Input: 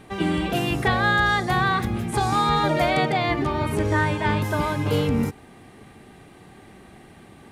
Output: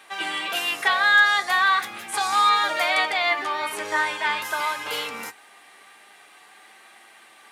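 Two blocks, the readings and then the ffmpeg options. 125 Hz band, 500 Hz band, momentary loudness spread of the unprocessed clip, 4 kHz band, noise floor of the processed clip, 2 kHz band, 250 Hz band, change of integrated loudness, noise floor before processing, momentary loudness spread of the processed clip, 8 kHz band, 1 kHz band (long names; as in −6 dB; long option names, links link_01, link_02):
below −30 dB, −8.0 dB, 5 LU, +5.0 dB, −51 dBFS, +4.5 dB, −18.5 dB, +1.0 dB, −48 dBFS, 12 LU, +5.0 dB, +0.5 dB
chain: -af "highpass=1100,flanger=delay=8.7:depth=1.6:regen=52:speed=0.43:shape=triangular,volume=9dB"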